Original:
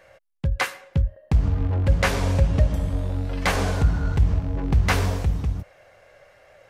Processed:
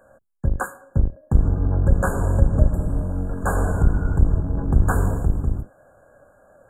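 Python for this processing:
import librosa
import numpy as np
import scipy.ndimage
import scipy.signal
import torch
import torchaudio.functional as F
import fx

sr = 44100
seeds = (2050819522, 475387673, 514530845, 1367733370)

y = fx.octave_divider(x, sr, octaves=1, level_db=0.0)
y = fx.brickwall_bandstop(y, sr, low_hz=1700.0, high_hz=6700.0)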